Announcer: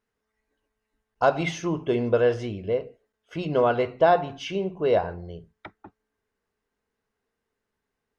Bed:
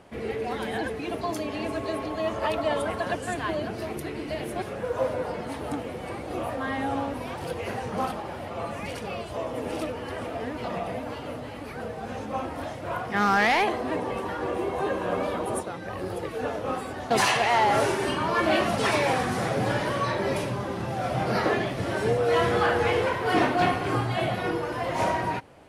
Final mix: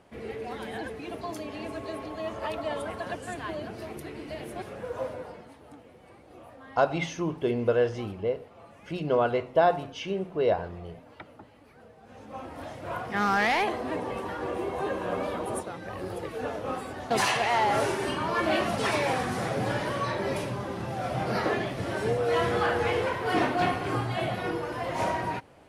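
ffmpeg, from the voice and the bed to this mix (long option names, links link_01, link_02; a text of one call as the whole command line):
ffmpeg -i stem1.wav -i stem2.wav -filter_complex "[0:a]adelay=5550,volume=-3dB[link_01];[1:a]volume=9dB,afade=type=out:start_time=4.96:duration=0.59:silence=0.251189,afade=type=in:start_time=12.04:duration=0.9:silence=0.177828[link_02];[link_01][link_02]amix=inputs=2:normalize=0" out.wav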